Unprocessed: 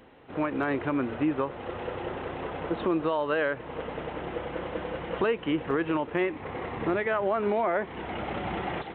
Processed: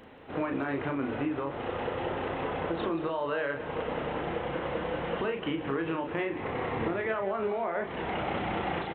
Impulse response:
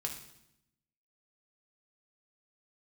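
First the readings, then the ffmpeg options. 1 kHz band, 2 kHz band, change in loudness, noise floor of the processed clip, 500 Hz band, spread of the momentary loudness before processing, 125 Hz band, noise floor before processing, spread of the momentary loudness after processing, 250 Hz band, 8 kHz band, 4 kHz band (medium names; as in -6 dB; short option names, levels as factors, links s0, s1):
-1.5 dB, -2.0 dB, -2.5 dB, -39 dBFS, -2.5 dB, 9 LU, -0.5 dB, -43 dBFS, 3 LU, -3.0 dB, no reading, +0.5 dB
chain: -filter_complex "[0:a]bandreject=f=60:t=h:w=6,bandreject=f=120:t=h:w=6,bandreject=f=180:t=h:w=6,bandreject=f=240:t=h:w=6,bandreject=f=300:t=h:w=6,bandreject=f=360:t=h:w=6,alimiter=limit=0.0891:level=0:latency=1:release=39,acompressor=threshold=0.0282:ratio=6,asplit=2[s0][s1];[s1]adelay=36,volume=0.531[s2];[s0][s2]amix=inputs=2:normalize=0,asplit=2[s3][s4];[s4]aecho=0:1:179:0.2[s5];[s3][s5]amix=inputs=2:normalize=0,volume=1.33"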